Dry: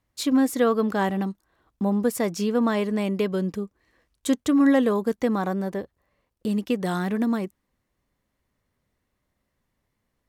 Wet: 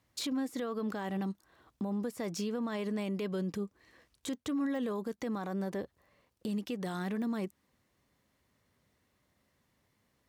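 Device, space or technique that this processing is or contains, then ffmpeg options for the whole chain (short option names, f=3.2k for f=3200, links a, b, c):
broadcast voice chain: -af "highpass=72,deesser=0.75,acompressor=threshold=-32dB:ratio=5,equalizer=f=4.5k:t=o:w=1.8:g=3,alimiter=level_in=6dB:limit=-24dB:level=0:latency=1:release=42,volume=-6dB,volume=2.5dB"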